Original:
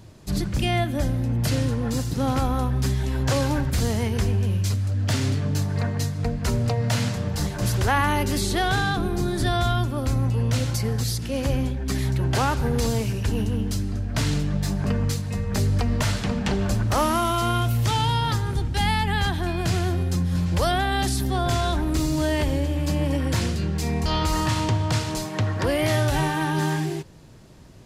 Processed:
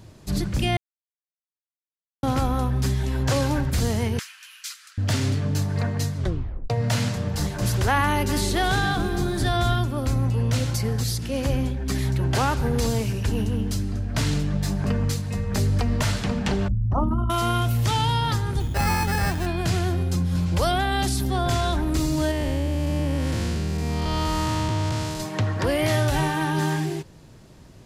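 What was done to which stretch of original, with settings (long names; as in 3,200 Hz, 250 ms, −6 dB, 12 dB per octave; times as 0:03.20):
0:00.77–0:02.23: silence
0:04.19–0:04.98: elliptic high-pass filter 1,300 Hz, stop band 70 dB
0:06.16: tape stop 0.54 s
0:08.02–0:09.80: feedback echo at a low word length 268 ms, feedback 35%, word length 8 bits, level −12 dB
0:16.68–0:17.30: spectral envelope exaggerated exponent 3
0:18.60–0:19.46: sample-rate reduction 3,400 Hz
0:20.04–0:21.29: notch filter 1,800 Hz
0:22.31–0:25.20: spectrum smeared in time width 285 ms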